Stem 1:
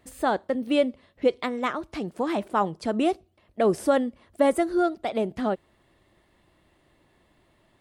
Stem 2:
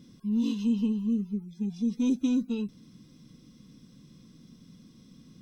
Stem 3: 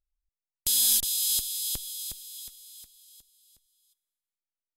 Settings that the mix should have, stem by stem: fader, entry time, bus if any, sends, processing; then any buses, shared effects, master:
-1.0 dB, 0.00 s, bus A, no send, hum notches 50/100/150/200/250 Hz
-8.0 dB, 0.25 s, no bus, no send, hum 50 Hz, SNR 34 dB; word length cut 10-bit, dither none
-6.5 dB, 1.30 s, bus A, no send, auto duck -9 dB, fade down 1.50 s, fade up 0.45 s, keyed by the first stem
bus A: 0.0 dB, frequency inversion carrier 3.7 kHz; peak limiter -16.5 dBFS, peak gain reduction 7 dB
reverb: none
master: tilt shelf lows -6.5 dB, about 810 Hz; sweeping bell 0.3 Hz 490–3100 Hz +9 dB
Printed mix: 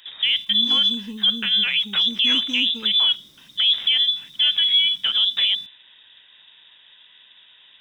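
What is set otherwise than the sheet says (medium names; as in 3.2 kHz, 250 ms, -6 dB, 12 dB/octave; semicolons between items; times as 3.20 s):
stem 1 -1.0 dB -> +7.0 dB; stem 2 -8.0 dB -> -1.5 dB; master: missing sweeping bell 0.3 Hz 490–3100 Hz +9 dB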